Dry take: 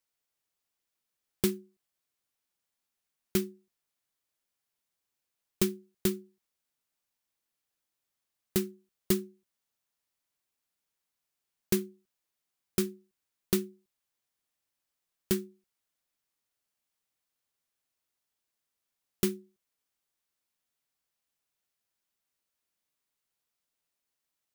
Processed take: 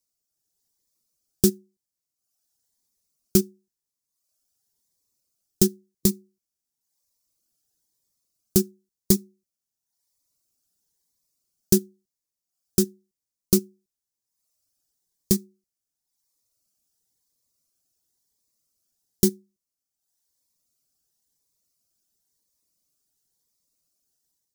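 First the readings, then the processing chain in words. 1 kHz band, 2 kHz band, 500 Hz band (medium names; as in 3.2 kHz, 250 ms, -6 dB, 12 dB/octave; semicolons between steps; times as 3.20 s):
no reading, -4.5 dB, +6.0 dB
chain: tilt shelf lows +6 dB, about 720 Hz; reverb removal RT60 0.9 s; resonant high shelf 3.9 kHz +11 dB, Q 1.5; level rider gain up to 7 dB; Shepard-style phaser rising 0.97 Hz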